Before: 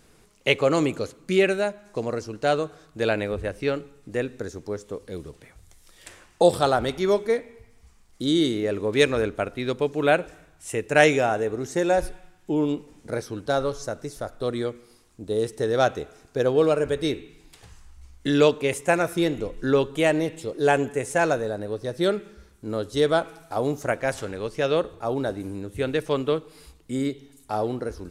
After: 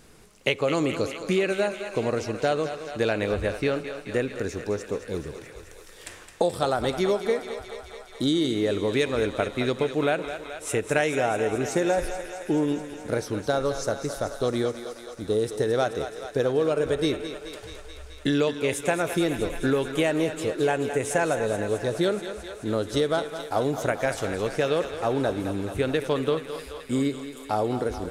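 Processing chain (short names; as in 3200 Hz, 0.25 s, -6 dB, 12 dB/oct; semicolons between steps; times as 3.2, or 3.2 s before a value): compressor 6:1, threshold -24 dBFS, peak gain reduction 12.5 dB; on a send: thinning echo 0.215 s, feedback 79%, high-pass 380 Hz, level -9.5 dB; on the sum: gain +3.5 dB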